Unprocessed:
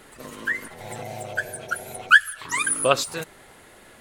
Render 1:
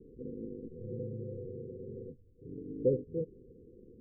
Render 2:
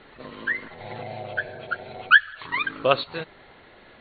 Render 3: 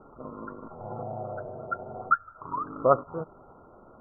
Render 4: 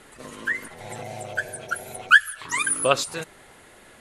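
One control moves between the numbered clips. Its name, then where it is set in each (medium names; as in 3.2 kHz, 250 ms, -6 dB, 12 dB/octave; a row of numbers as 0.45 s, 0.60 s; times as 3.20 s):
Chebyshev low-pass, frequency: 510 Hz, 4.4 kHz, 1.4 kHz, 12 kHz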